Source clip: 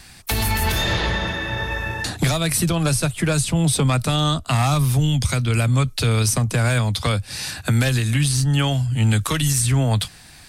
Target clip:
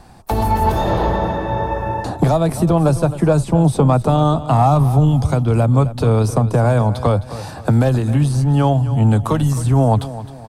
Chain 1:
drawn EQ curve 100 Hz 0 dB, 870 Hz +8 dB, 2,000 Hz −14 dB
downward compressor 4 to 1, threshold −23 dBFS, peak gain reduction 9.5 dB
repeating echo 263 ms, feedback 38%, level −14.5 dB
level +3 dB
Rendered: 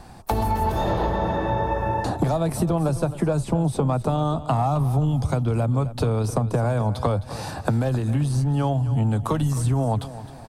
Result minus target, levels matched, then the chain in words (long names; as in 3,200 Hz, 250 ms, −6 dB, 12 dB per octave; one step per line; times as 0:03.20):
downward compressor: peak gain reduction +9.5 dB
drawn EQ curve 100 Hz 0 dB, 870 Hz +8 dB, 2,000 Hz −14 dB
repeating echo 263 ms, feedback 38%, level −14.5 dB
level +3 dB